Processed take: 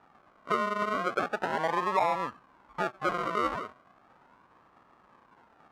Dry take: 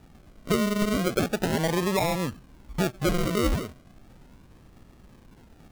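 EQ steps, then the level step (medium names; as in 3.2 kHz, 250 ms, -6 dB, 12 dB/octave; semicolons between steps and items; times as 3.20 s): band-pass filter 1.1 kHz, Q 2.1; +6.5 dB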